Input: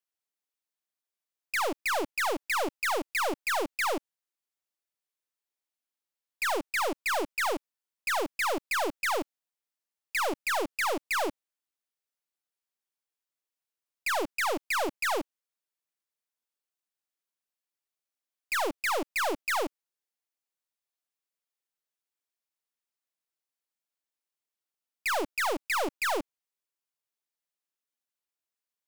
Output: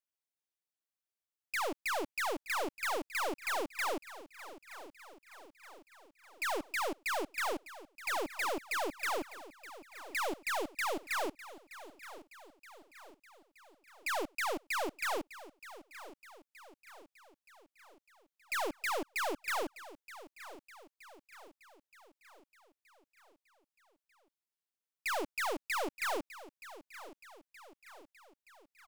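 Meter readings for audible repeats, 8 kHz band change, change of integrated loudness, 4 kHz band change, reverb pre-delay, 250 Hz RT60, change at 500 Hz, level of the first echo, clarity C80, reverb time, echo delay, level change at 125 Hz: 4, -6.0 dB, -6.0 dB, -6.0 dB, no reverb, no reverb, -6.0 dB, -15.5 dB, no reverb, no reverb, 923 ms, -6.0 dB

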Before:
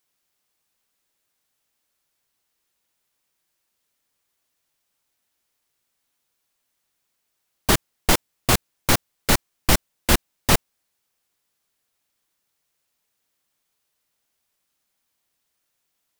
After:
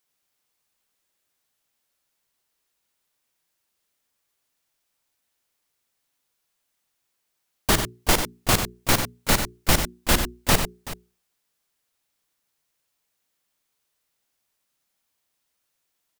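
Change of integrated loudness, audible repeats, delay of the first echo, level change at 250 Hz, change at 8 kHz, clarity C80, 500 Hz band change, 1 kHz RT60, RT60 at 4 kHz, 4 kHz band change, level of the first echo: -1.0 dB, 3, 53 ms, -1.5 dB, -0.5 dB, no reverb, -1.0 dB, no reverb, no reverb, -0.5 dB, -14.5 dB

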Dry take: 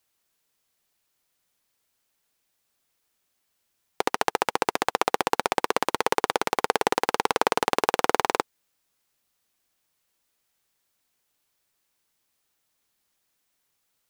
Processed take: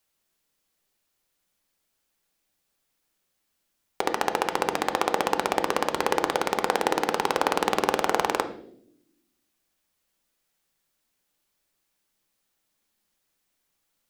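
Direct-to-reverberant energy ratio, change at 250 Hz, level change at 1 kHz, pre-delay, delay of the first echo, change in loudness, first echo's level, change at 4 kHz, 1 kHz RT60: 10.0 dB, +2.0 dB, -0.5 dB, 3 ms, no echo, -0.5 dB, no echo, -1.0 dB, 0.55 s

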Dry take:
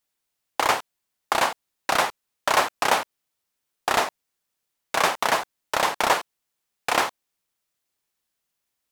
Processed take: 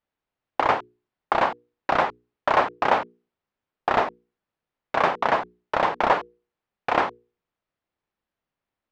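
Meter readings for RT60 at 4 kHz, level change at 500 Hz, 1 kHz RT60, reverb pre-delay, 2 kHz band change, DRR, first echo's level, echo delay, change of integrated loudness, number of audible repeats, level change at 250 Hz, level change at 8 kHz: no reverb, +2.5 dB, no reverb, no reverb, -2.0 dB, no reverb, no echo, no echo, 0.0 dB, no echo, +3.0 dB, under -20 dB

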